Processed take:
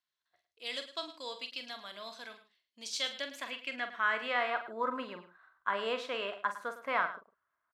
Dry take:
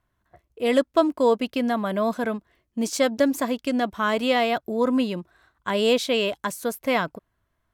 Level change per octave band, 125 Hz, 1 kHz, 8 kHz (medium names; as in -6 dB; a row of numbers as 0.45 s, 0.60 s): under -20 dB, -8.5 dB, -12.5 dB